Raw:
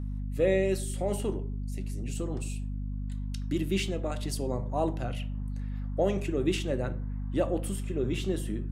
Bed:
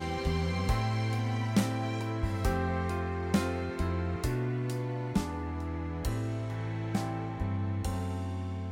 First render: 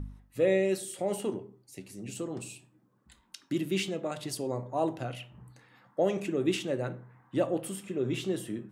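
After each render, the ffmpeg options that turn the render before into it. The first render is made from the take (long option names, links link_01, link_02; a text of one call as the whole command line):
ffmpeg -i in.wav -af "bandreject=frequency=50:width_type=h:width=4,bandreject=frequency=100:width_type=h:width=4,bandreject=frequency=150:width_type=h:width=4,bandreject=frequency=200:width_type=h:width=4,bandreject=frequency=250:width_type=h:width=4" out.wav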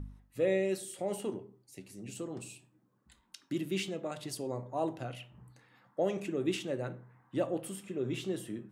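ffmpeg -i in.wav -af "volume=-4dB" out.wav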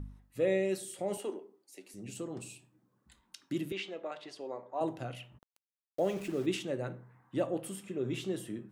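ffmpeg -i in.wav -filter_complex "[0:a]asettb=1/sr,asplit=3[link_01][link_02][link_03];[link_01]atrim=end=1.174[link_04];[link_02]atrim=start=1.17:end=1.94,asetpts=PTS-STARTPTS,afade=type=in:duration=0.004:curve=qsin,afade=type=out:start_time=0.766:duration=0.004:curve=qsin,highpass=frequency=290:width=0.5412,highpass=frequency=290:width=1.3066[link_05];[link_03]atrim=start=1.936[link_06];[link_04][link_05]acrossfade=duration=0.004:curve1=hsin:curve2=qsin[link_07];[link_07][link_06]acrossfade=duration=0.004:curve1=qsin:curve2=hsin,asettb=1/sr,asplit=3[link_08][link_09][link_10];[link_08]atrim=end=3.724[link_11];[link_09]atrim=start=3.72:end=4.81,asetpts=PTS-STARTPTS,afade=type=in:duration=0.004:curve=qsin,afade=type=out:start_time=1.086:duration=0.004:curve=qsin,highpass=440,lowpass=3500[link_12];[link_10]atrim=start=4.806[link_13];[link_11][link_12]acrossfade=duration=0.004:curve1=hsin:curve2=qsin[link_14];[link_14][link_13]acrossfade=duration=0.004:curve1=qsin:curve2=hsin,asplit=3[link_15][link_16][link_17];[link_15]afade=type=out:start_time=5.37:duration=0.02[link_18];[link_16]aeval=exprs='val(0)*gte(abs(val(0)),0.00501)':channel_layout=same,afade=type=in:start_time=5.37:duration=0.02,afade=type=out:start_time=6.45:duration=0.02[link_19];[link_17]afade=type=in:start_time=6.45:duration=0.02[link_20];[link_18][link_19][link_20]amix=inputs=3:normalize=0" out.wav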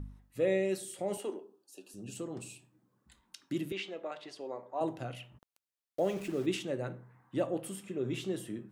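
ffmpeg -i in.wav -filter_complex "[0:a]asettb=1/sr,asplit=3[link_01][link_02][link_03];[link_01]atrim=end=1.414[link_04];[link_02]atrim=start=1.41:end=2.13,asetpts=PTS-STARTPTS,afade=type=in:duration=0.004:curve=qsin,afade=type=out:start_time=0.716:duration=0.004:curve=qsin,asuperstop=centerf=2100:order=20:qfactor=3.2[link_05];[link_03]atrim=start=2.126[link_06];[link_04][link_05]acrossfade=duration=0.004:curve1=hsin:curve2=qsin[link_07];[link_07][link_06]acrossfade=duration=0.004:curve1=qsin:curve2=hsin" out.wav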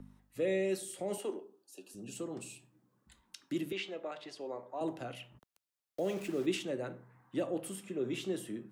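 ffmpeg -i in.wav -filter_complex "[0:a]acrossover=split=160|470|1800[link_01][link_02][link_03][link_04];[link_01]acompressor=threshold=-59dB:ratio=6[link_05];[link_03]alimiter=level_in=11dB:limit=-24dB:level=0:latency=1,volume=-11dB[link_06];[link_05][link_02][link_06][link_04]amix=inputs=4:normalize=0" out.wav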